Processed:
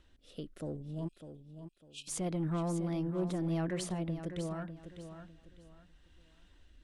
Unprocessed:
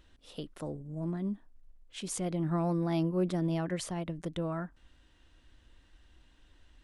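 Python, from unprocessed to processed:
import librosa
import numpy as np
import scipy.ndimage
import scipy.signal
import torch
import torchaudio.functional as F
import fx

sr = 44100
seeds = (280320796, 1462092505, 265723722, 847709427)

y = fx.rotary(x, sr, hz=0.75)
y = 10.0 ** (-26.5 / 20.0) * np.tanh(y / 10.0 ** (-26.5 / 20.0))
y = fx.brickwall_highpass(y, sr, low_hz=2400.0, at=(1.07, 2.07), fade=0.02)
y = fx.echo_feedback(y, sr, ms=601, feedback_pct=28, wet_db=-10.0)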